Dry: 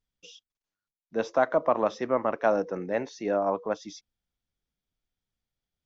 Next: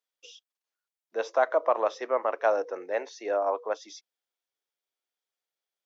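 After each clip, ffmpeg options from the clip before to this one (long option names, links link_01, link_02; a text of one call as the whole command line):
ffmpeg -i in.wav -af "highpass=frequency=410:width=0.5412,highpass=frequency=410:width=1.3066" out.wav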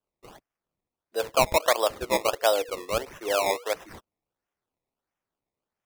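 ffmpeg -i in.wav -af "acrusher=samples=20:mix=1:aa=0.000001:lfo=1:lforange=20:lforate=1.5,volume=2dB" out.wav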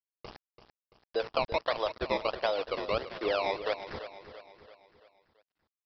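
ffmpeg -i in.wav -af "acompressor=threshold=-33dB:ratio=4,aresample=11025,aeval=exprs='val(0)*gte(abs(val(0)),0.00596)':channel_layout=same,aresample=44100,aecho=1:1:337|674|1011|1348|1685:0.251|0.123|0.0603|0.0296|0.0145,volume=4.5dB" out.wav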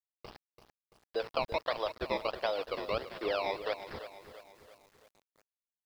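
ffmpeg -i in.wav -af "acrusher=bits=9:mix=0:aa=0.000001,volume=-3dB" out.wav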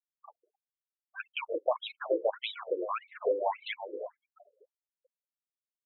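ffmpeg -i in.wav -filter_complex "[0:a]afftfilt=real='re*gte(hypot(re,im),0.01)':imag='im*gte(hypot(re,im),0.01)':win_size=1024:overlap=0.75,asplit=2[link_01][link_02];[link_02]adelay=190,highpass=300,lowpass=3400,asoftclip=type=hard:threshold=-27.5dB,volume=-27dB[link_03];[link_01][link_03]amix=inputs=2:normalize=0,afftfilt=real='re*between(b*sr/1024,370*pow(3100/370,0.5+0.5*sin(2*PI*1.7*pts/sr))/1.41,370*pow(3100/370,0.5+0.5*sin(2*PI*1.7*pts/sr))*1.41)':imag='im*between(b*sr/1024,370*pow(3100/370,0.5+0.5*sin(2*PI*1.7*pts/sr))/1.41,370*pow(3100/370,0.5+0.5*sin(2*PI*1.7*pts/sr))*1.41)':win_size=1024:overlap=0.75,volume=7.5dB" out.wav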